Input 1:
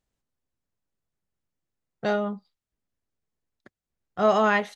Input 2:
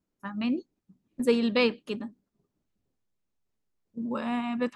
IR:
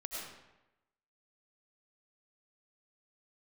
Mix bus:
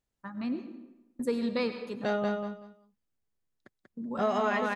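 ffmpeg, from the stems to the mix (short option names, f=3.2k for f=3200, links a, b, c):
-filter_complex "[0:a]volume=-4dB,asplit=2[a][b];[b]volume=-4dB[c];[1:a]agate=range=-20dB:threshold=-49dB:ratio=16:detection=peak,equalizer=f=2.9k:t=o:w=0.35:g=-11,volume=-7dB,asplit=2[d][e];[e]volume=-5.5dB[f];[2:a]atrim=start_sample=2205[g];[f][g]afir=irnorm=-1:irlink=0[h];[c]aecho=0:1:189|378|567:1|0.21|0.0441[i];[a][d][h][i]amix=inputs=4:normalize=0,acompressor=threshold=-24dB:ratio=6"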